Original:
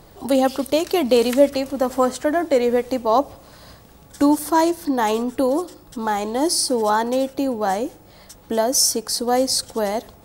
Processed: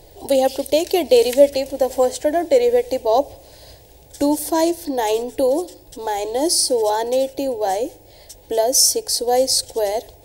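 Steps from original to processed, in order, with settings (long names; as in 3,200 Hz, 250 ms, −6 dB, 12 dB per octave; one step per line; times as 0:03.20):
phaser with its sweep stopped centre 510 Hz, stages 4
level +3.5 dB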